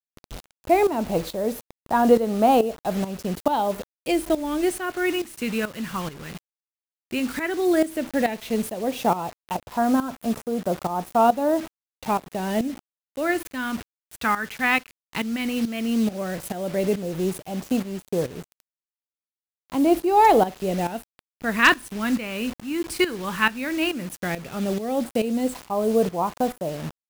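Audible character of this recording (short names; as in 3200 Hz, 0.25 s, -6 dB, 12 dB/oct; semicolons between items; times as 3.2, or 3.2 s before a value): phasing stages 2, 0.12 Hz, lowest notch 650–2100 Hz; a quantiser's noise floor 8-bit, dither none; tremolo saw up 2.3 Hz, depth 75%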